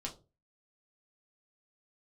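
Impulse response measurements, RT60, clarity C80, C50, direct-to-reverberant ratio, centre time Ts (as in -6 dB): 0.30 s, 19.5 dB, 14.0 dB, -1.5 dB, 13 ms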